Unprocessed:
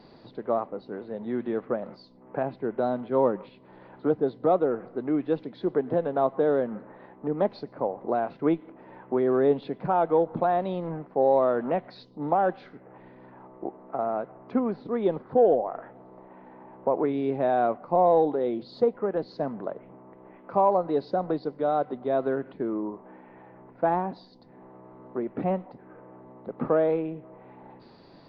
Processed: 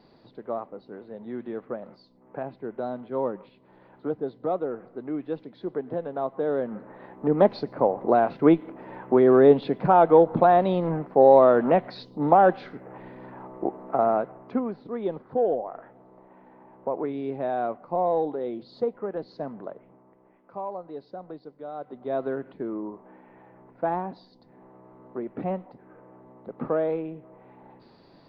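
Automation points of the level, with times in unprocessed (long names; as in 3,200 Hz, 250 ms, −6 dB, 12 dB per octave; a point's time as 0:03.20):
0:06.30 −5 dB
0:07.34 +6.5 dB
0:14.10 +6.5 dB
0:14.74 −4 dB
0:19.64 −4 dB
0:20.51 −12.5 dB
0:21.72 −12.5 dB
0:22.13 −2.5 dB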